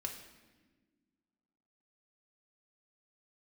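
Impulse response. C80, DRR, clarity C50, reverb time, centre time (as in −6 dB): 9.0 dB, 1.5 dB, 7.0 dB, 1.4 s, 26 ms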